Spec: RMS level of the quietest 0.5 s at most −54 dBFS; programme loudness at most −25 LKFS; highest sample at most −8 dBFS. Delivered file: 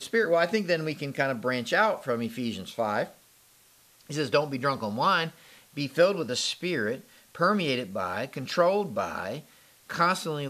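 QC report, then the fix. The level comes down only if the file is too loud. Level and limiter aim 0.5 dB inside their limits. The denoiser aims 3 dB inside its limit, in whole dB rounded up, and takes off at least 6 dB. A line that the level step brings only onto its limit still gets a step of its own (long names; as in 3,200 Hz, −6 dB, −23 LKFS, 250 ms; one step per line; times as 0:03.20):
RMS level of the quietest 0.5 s −59 dBFS: in spec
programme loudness −27.5 LKFS: in spec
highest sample −9.0 dBFS: in spec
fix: no processing needed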